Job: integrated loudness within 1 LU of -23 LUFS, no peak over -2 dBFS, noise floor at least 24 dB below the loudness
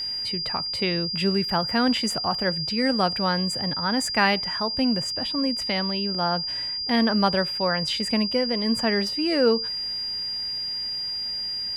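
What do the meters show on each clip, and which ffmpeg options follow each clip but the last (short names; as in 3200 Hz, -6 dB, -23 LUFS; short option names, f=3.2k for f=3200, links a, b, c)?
hum 60 Hz; harmonics up to 300 Hz; hum level -56 dBFS; steady tone 4800 Hz; tone level -27 dBFS; loudness -23.5 LUFS; peak -6.0 dBFS; loudness target -23.0 LUFS
-> -af "bandreject=f=60:t=h:w=4,bandreject=f=120:t=h:w=4,bandreject=f=180:t=h:w=4,bandreject=f=240:t=h:w=4,bandreject=f=300:t=h:w=4"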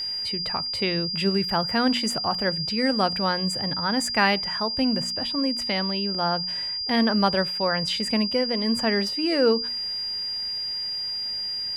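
hum none; steady tone 4800 Hz; tone level -27 dBFS
-> -af "bandreject=f=4.8k:w=30"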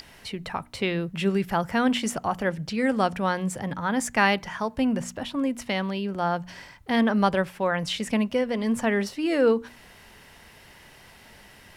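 steady tone none; loudness -26.0 LUFS; peak -6.5 dBFS; loudness target -23.0 LUFS
-> -af "volume=3dB"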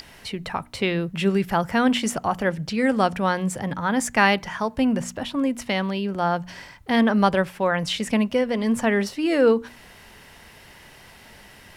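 loudness -23.0 LUFS; peak -3.5 dBFS; noise floor -48 dBFS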